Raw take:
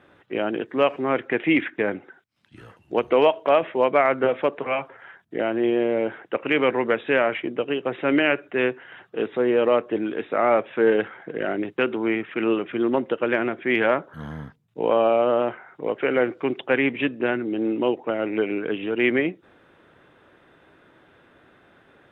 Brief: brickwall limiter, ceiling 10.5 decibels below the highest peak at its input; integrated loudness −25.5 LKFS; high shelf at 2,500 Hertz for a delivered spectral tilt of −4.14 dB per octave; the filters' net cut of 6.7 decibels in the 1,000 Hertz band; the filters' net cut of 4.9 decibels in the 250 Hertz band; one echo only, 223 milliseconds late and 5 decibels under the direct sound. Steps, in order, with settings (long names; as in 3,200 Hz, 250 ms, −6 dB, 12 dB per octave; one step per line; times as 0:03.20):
parametric band 250 Hz −6 dB
parametric band 1,000 Hz −8.5 dB
high-shelf EQ 2,500 Hz −4.5 dB
brickwall limiter −21 dBFS
single-tap delay 223 ms −5 dB
level +5.5 dB